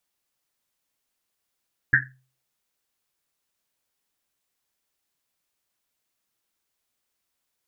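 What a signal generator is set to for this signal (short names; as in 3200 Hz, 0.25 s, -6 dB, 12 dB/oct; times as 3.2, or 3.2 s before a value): Risset drum, pitch 130 Hz, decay 0.44 s, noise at 1700 Hz, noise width 340 Hz, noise 75%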